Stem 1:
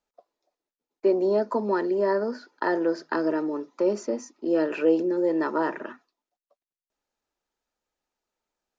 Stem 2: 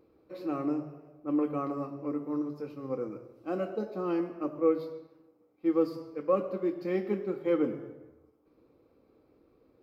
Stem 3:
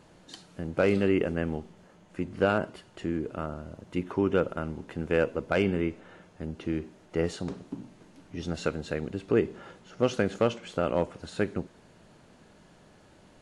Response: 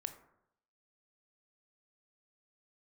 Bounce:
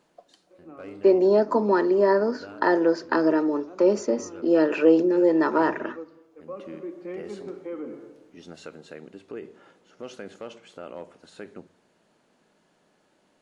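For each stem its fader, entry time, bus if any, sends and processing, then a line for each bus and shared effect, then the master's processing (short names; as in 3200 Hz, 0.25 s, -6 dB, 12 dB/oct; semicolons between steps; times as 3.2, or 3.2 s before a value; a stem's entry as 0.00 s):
+1.5 dB, 0.00 s, no bus, send -6.5 dB, dry
6.33 s -13.5 dB -> 7.03 s -3 dB, 0.20 s, bus A, send -11 dB, LPF 2500 Hz 12 dB/oct
-9.0 dB, 0.00 s, bus A, send -11.5 dB, auto duck -18 dB, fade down 0.90 s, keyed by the first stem
bus A: 0.0 dB, HPF 200 Hz 12 dB/oct; limiter -29.5 dBFS, peak gain reduction 10 dB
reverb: on, RT60 0.75 s, pre-delay 18 ms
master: dry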